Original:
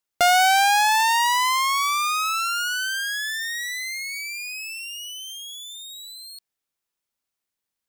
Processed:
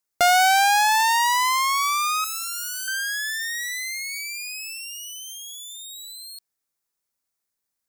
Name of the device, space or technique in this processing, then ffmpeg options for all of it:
exciter from parts: -filter_complex "[0:a]asettb=1/sr,asplit=3[link_01][link_02][link_03];[link_01]atrim=end=2.244[link_04];[link_02]atrim=start=2.24:end=2.88,asetpts=PTS-STARTPTS,afade=type=in:duration=0.004:curve=qsin,afade=type=out:start_time=0.636:duration=0.004:curve=qsin,aderivative[link_05];[link_03]atrim=start=2.876[link_06];[link_04][link_05]acrossfade=duration=0.004:curve1=hsin:curve2=qsin[link_07];[link_07][link_06]acrossfade=duration=0.004:curve1=qsin:curve2=hsin,asplit=2[link_08][link_09];[link_09]highpass=frequency=2800:width=0.5412,highpass=frequency=2800:width=1.3066,asoftclip=type=tanh:threshold=-28dB,volume=-4.5dB[link_10];[link_08][link_10]amix=inputs=2:normalize=0"

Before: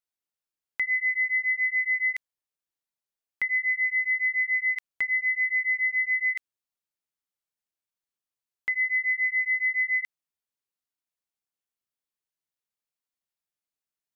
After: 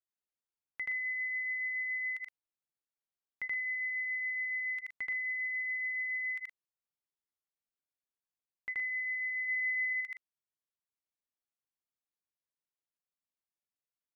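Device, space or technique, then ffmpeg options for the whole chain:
behind a face mask: -filter_complex "[0:a]highshelf=frequency=2200:gain=-7,asettb=1/sr,asplit=3[link_01][link_02][link_03];[link_01]atrim=end=9.484[link_04];[link_02]atrim=start=9.48:end=9.93,asetpts=PTS-STARTPTS,afade=type=in:duration=0.004:curve=qsin,afade=type=out:start_time=0.446:duration=0.004:curve=qsin,equalizer=frequency=2100:width_type=o:width=0.26:gain=3.5[link_05];[link_03]atrim=start=9.926[link_06];[link_04][link_05]acrossfade=duration=0.004:curve1=hsin:curve2=qsin[link_07];[link_07][link_06]acrossfade=duration=0.004:curve1=qsin:curve2=hsin,aecho=1:1:78.72|119.5:1|0.447,volume=-8.5dB"

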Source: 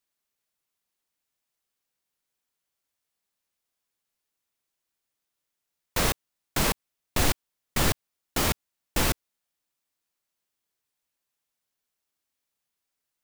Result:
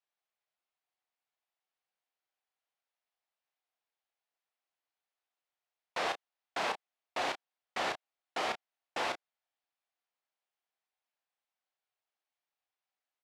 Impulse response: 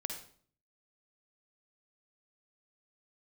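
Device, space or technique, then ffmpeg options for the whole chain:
intercom: -filter_complex "[0:a]highpass=500,lowpass=3500,equalizer=frequency=740:width_type=o:width=0.43:gain=7,asoftclip=type=tanh:threshold=-19dB,asplit=2[link_01][link_02];[link_02]adelay=32,volume=-8dB[link_03];[link_01][link_03]amix=inputs=2:normalize=0,volume=-5dB"

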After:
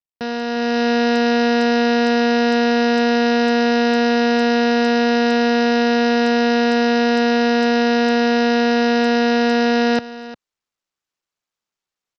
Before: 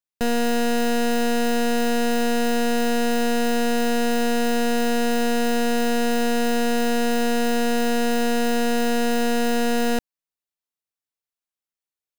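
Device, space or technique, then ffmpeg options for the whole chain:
Bluetooth headset: -af "highpass=130,equalizer=frequency=1200:width=2.2:gain=4.5,aecho=1:1:354:0.158,dynaudnorm=framelen=450:gausssize=3:maxgain=9dB,aresample=16000,aresample=44100,volume=-3dB" -ar 44100 -c:a sbc -b:a 64k

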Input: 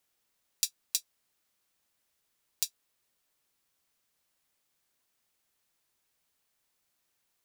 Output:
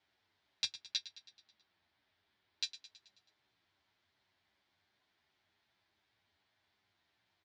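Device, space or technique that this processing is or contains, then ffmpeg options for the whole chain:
barber-pole flanger into a guitar amplifier: -filter_complex "[0:a]asettb=1/sr,asplit=3[link_01][link_02][link_03];[link_01]atrim=end=0.814[link_04];[link_02]atrim=start=0.81:end=2.63,asetpts=PTS-STARTPTS,afade=type=in:duration=0.004:curve=qsin,afade=type=out:start_time=1.816:duration=0.004:curve=qsin,lowpass=6000[link_05];[link_03]atrim=start=2.626[link_06];[link_04][link_05]acrossfade=duration=0.004:curve1=hsin:curve2=qsin[link_07];[link_07][link_06]acrossfade=duration=0.004:curve1=qsin:curve2=hsin,asplit=2[link_08][link_09];[link_09]adelay=9.6,afreqshift=-2.7[link_10];[link_08][link_10]amix=inputs=2:normalize=1,asoftclip=type=tanh:threshold=-18.5dB,highpass=76,equalizer=frequency=95:width_type=q:width=4:gain=8,equalizer=frequency=150:width_type=q:width=4:gain=-7,equalizer=frequency=250:width_type=q:width=4:gain=-4,equalizer=frequency=500:width_type=q:width=4:gain=-10,equalizer=frequency=1200:width_type=q:width=4:gain=-6,equalizer=frequency=2700:width_type=q:width=4:gain=-6,lowpass=frequency=3900:width=0.5412,lowpass=frequency=3900:width=1.3066,aecho=1:1:108|216|324|432|540|648:0.178|0.103|0.0598|0.0347|0.0201|0.0117,volume=10dB"

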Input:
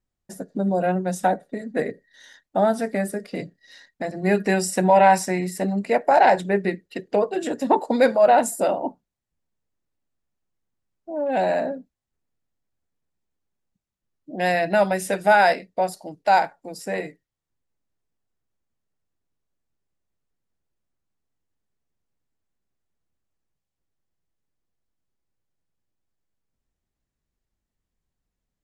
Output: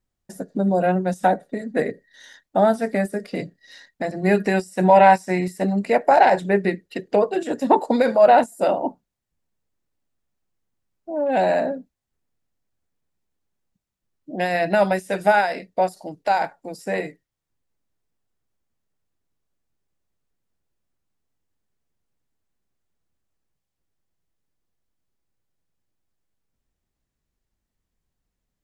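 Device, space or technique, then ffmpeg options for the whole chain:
de-esser from a sidechain: -filter_complex "[0:a]asplit=2[link_01][link_02];[link_02]highpass=frequency=4800:width=0.5412,highpass=frequency=4800:width=1.3066,apad=whole_len=1262746[link_03];[link_01][link_03]sidechaincompress=threshold=-43dB:ratio=16:attack=2:release=48,volume=2.5dB"

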